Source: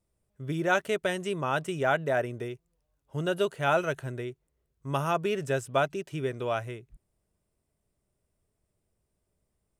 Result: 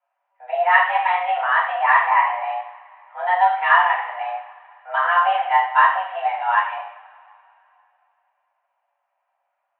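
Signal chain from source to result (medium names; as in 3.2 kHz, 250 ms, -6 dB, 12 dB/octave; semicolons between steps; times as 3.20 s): mistuned SSB +360 Hz 290–2300 Hz; two-slope reverb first 0.61 s, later 2.8 s, from -22 dB, DRR -7.5 dB; trim +3 dB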